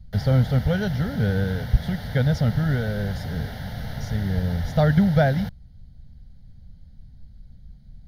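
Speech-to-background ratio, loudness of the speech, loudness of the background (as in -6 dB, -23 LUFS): 10.0 dB, -23.5 LUFS, -33.5 LUFS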